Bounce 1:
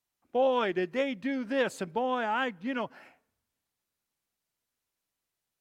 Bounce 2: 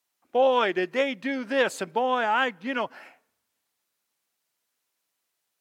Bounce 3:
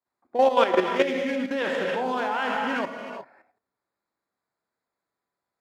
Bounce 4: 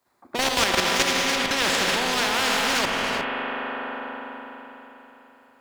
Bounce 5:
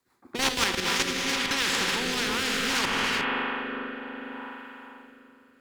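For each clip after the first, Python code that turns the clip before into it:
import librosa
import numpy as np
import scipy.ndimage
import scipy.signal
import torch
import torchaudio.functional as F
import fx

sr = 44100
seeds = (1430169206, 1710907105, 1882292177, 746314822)

y1 = fx.highpass(x, sr, hz=440.0, slope=6)
y1 = y1 * 10.0 ** (7.0 / 20.0)
y2 = fx.wiener(y1, sr, points=15)
y2 = fx.rev_gated(y2, sr, seeds[0], gate_ms=400, shape='flat', drr_db=1.0)
y2 = fx.level_steps(y2, sr, step_db=10)
y2 = y2 * 10.0 ** (3.5 / 20.0)
y3 = fx.leveller(y2, sr, passes=1)
y3 = fx.rev_spring(y3, sr, rt60_s=3.8, pass_ms=(41,), chirp_ms=70, drr_db=11.5)
y3 = fx.spectral_comp(y3, sr, ratio=4.0)
y3 = y3 * 10.0 ** (-1.5 / 20.0)
y4 = fx.rotary_switch(y3, sr, hz=6.0, then_hz=0.65, switch_at_s=0.38)
y4 = fx.rider(y4, sr, range_db=3, speed_s=0.5)
y4 = fx.peak_eq(y4, sr, hz=630.0, db=-12.5, octaves=0.38)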